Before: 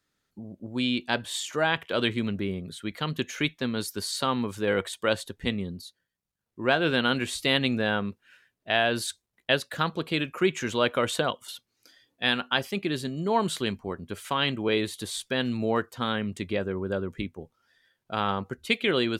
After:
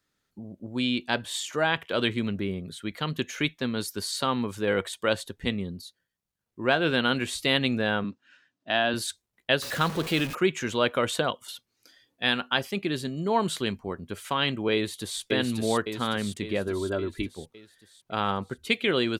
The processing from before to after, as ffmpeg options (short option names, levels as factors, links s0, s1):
-filter_complex "[0:a]asettb=1/sr,asplit=3[s0][s1][s2];[s0]atrim=end=8.044[s3];[s1]atrim=start=8.04:end=8.94,asetpts=PTS-STARTPTS,afade=t=in:d=0.004:c=qsin,afade=t=out:st=0.896:d=0.004:c=qsin,highpass=140,equalizer=f=280:t=q:w=4:g=9,equalizer=f=430:t=q:w=4:g=-10,equalizer=f=2200:t=q:w=4:g=-6,lowpass=f=6900:w=0.5412,lowpass=f=6900:w=1.3066[s4];[s2]atrim=start=8.936[s5];[s3][s4]acrossfade=d=0.004:c1=hsin:c2=qsin[s6];[s6][s5]acrossfade=d=0.004:c1=qsin:c2=hsin,asettb=1/sr,asplit=3[s7][s8][s9];[s7]atrim=end=9.624[s10];[s8]atrim=start=9.62:end=10.35,asetpts=PTS-STARTPTS,afade=t=in:d=0.004:c=qsin,afade=t=out:st=0.726:d=0.004:c=qsin,aeval=exprs='val(0)+0.5*0.0299*sgn(val(0))':c=same[s11];[s9]atrim=start=10.346[s12];[s10][s11]acrossfade=d=0.004:c1=hsin:c2=qsin[s13];[s13][s12]acrossfade=d=0.004:c1=qsin:c2=hsin,asplit=2[s14][s15];[s15]afade=t=in:st=14.74:d=0.01,afade=t=out:st=15.21:d=0.01,aecho=0:1:560|1120|1680|2240|2800|3360|3920|4480:0.794328|0.436881|0.240284|0.132156|0.072686|0.0399773|0.0219875|0.0120931[s16];[s14][s16]amix=inputs=2:normalize=0,asettb=1/sr,asplit=3[s17][s18][s19];[s17]atrim=end=16.674[s20];[s18]atrim=start=16.67:end=17.27,asetpts=PTS-STARTPTS,afade=t=in:d=0.004:c=qsin,afade=t=out:st=0.596:d=0.004:c=qsin,aecho=1:1:3:0.65,atrim=end_sample=26460[s21];[s19]atrim=start=17.266[s22];[s20][s21]acrossfade=d=0.004:c1=hsin:c2=qsin[s23];[s23][s22]acrossfade=d=0.004:c1=qsin:c2=hsin"